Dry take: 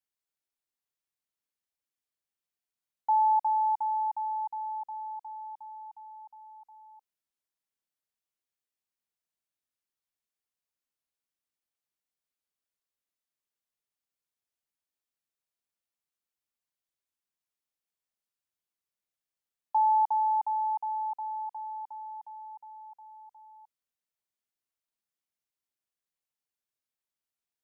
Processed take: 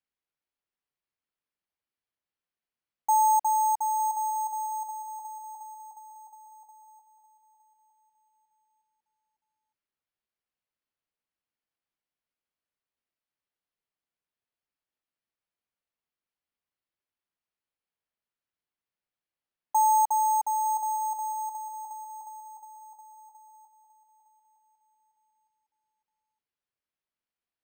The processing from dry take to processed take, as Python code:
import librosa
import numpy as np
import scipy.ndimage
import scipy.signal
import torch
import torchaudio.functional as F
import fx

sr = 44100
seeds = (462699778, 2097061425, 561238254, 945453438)

p1 = x + fx.echo_feedback(x, sr, ms=911, feedback_pct=28, wet_db=-13.0, dry=0)
p2 = np.repeat(scipy.signal.resample_poly(p1, 1, 6), 6)[:len(p1)]
y = p2 * librosa.db_to_amplitude(2.0)